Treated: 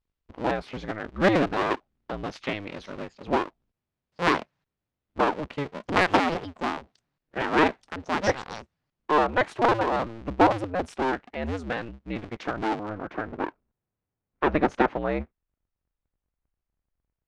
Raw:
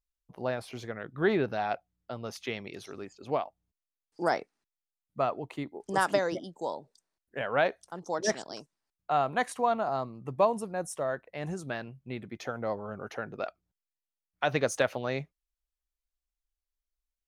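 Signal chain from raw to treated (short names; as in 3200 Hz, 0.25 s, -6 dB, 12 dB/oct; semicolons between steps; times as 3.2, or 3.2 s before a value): cycle switcher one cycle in 2, inverted; LPF 3500 Hz 12 dB/oct, from 12.89 s 1800 Hz; gain +5.5 dB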